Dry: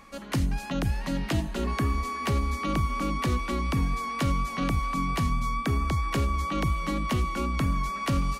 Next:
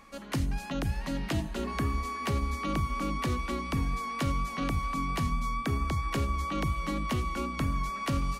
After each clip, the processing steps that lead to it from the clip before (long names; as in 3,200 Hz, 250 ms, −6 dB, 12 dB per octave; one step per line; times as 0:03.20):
mains-hum notches 60/120/180 Hz
level −3 dB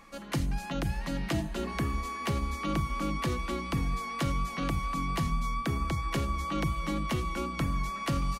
comb filter 5.9 ms, depth 33%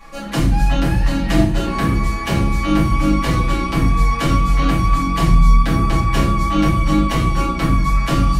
convolution reverb RT60 0.55 s, pre-delay 4 ms, DRR −10.5 dB
level +2 dB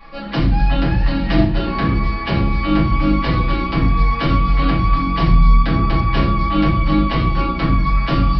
downsampling to 11,025 Hz